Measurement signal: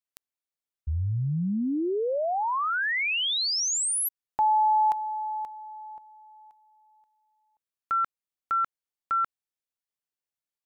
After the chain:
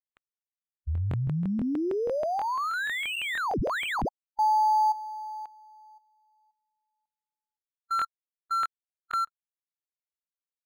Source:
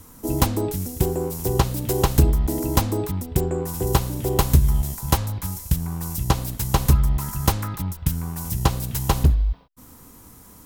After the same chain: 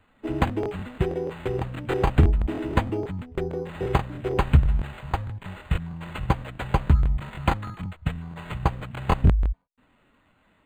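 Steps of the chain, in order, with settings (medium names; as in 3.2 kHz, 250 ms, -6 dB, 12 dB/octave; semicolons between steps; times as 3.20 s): expander on every frequency bin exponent 1.5; crackling interface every 0.16 s, samples 1024, repeat, from 0.45 s; decimation joined by straight lines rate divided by 8×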